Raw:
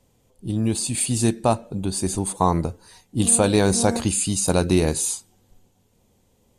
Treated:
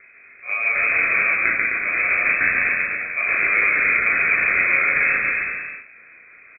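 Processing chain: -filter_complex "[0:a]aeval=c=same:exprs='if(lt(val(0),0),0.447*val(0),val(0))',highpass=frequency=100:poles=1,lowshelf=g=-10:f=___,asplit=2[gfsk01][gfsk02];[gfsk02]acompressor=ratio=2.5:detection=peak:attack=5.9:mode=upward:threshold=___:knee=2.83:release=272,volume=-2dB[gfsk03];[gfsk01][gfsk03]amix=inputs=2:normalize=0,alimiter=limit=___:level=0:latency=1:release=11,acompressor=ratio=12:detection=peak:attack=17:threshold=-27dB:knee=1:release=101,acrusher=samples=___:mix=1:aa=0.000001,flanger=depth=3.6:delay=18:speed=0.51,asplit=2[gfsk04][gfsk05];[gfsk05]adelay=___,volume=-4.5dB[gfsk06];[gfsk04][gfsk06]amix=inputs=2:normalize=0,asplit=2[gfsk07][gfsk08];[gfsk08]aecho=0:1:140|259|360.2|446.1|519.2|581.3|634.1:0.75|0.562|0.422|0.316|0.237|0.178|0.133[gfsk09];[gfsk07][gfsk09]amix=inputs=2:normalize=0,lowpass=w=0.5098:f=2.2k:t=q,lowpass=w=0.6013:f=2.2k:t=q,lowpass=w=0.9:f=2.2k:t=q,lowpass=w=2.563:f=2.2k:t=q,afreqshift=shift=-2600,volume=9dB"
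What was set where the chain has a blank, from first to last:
490, -41dB, -10.5dB, 26, 35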